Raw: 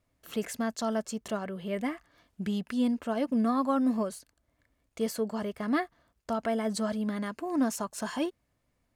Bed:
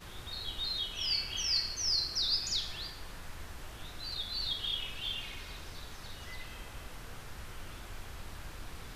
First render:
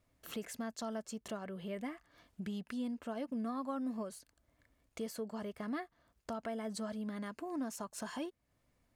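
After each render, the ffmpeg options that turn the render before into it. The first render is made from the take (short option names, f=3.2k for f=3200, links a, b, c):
-af "acompressor=threshold=-46dB:ratio=2"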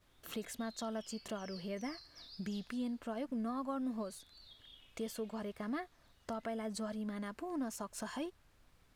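-filter_complex "[1:a]volume=-23.5dB[a];[0:a][a]amix=inputs=2:normalize=0"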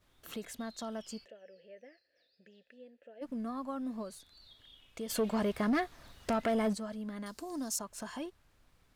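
-filter_complex "[0:a]asplit=3[a][b][c];[a]afade=t=out:st=1.24:d=0.02[d];[b]asplit=3[e][f][g];[e]bandpass=f=530:t=q:w=8,volume=0dB[h];[f]bandpass=f=1.84k:t=q:w=8,volume=-6dB[i];[g]bandpass=f=2.48k:t=q:w=8,volume=-9dB[j];[h][i][j]amix=inputs=3:normalize=0,afade=t=in:st=1.24:d=0.02,afade=t=out:st=3.21:d=0.02[k];[c]afade=t=in:st=3.21:d=0.02[l];[d][k][l]amix=inputs=3:normalize=0,asplit=3[m][n][o];[m]afade=t=out:st=5.09:d=0.02[p];[n]aeval=exprs='0.0562*sin(PI/2*2.51*val(0)/0.0562)':c=same,afade=t=in:st=5.09:d=0.02,afade=t=out:st=6.73:d=0.02[q];[o]afade=t=in:st=6.73:d=0.02[r];[p][q][r]amix=inputs=3:normalize=0,asettb=1/sr,asplit=3[s][t][u];[s]atrim=end=7.264[v];[t]atrim=start=7.26:end=7.79,asetpts=PTS-STARTPTS,afade=t=in:d=0.004:c=qsin,afade=t=out:st=0.526:d=0.004:c=qsin,highshelf=f=3.4k:t=q:w=1.5:g=11[w];[u]atrim=start=7.786[x];[v][w]acrossfade=d=0.004:c1=hsin:c2=qsin[y];[y][x]acrossfade=d=0.004:c1=qsin:c2=hsin"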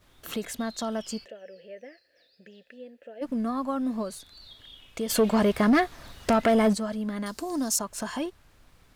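-af "volume=9.5dB"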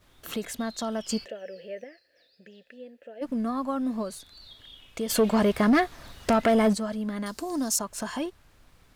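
-filter_complex "[0:a]asettb=1/sr,asplit=3[a][b][c];[a]atrim=end=1.094[d];[b]atrim=start=1.09:end=1.84,asetpts=PTS-STARTPTS,afade=t=in:d=0.004:c=qsin,afade=t=out:st=0.746:d=0.004:c=qsin,acontrast=37[e];[c]atrim=start=1.836[f];[d][e]acrossfade=d=0.004:c1=hsin:c2=qsin[g];[g][f]acrossfade=d=0.004:c1=qsin:c2=hsin"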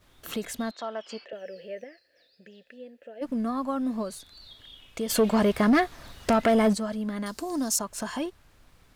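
-filter_complex "[0:a]asettb=1/sr,asplit=3[a][b][c];[a]atrim=end=0.714[d];[b]atrim=start=0.71:end=1.33,asetpts=PTS-STARTPTS,afade=t=in:d=0.004:c=qsin,afade=t=out:st=0.616:d=0.004:c=qsin,highpass=480,lowpass=2.9k[e];[c]atrim=start=1.326[f];[d][e]acrossfade=d=0.004:c1=hsin:c2=qsin[g];[g][f]acrossfade=d=0.004:c1=qsin:c2=hsin"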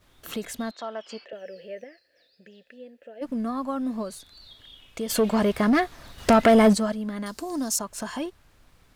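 -filter_complex "[0:a]asettb=1/sr,asplit=3[a][b][c];[a]atrim=end=6.184[d];[b]atrim=start=6.18:end=6.92,asetpts=PTS-STARTPTS,afade=t=in:d=0.004:c=qsin,afade=t=out:st=0.736:d=0.004:c=qsin,acontrast=34[e];[c]atrim=start=6.916[f];[d][e]acrossfade=d=0.004:c1=hsin:c2=qsin[g];[g][f]acrossfade=d=0.004:c1=qsin:c2=hsin"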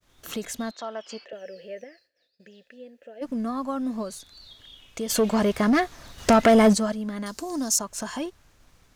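-af "agate=range=-33dB:threshold=-56dB:ratio=3:detection=peak,equalizer=f=6.3k:w=2.3:g=6"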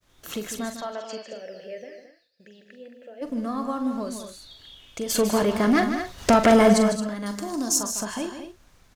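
-filter_complex "[0:a]asplit=2[a][b];[b]adelay=43,volume=-10dB[c];[a][c]amix=inputs=2:normalize=0,aecho=1:1:152|220:0.335|0.316"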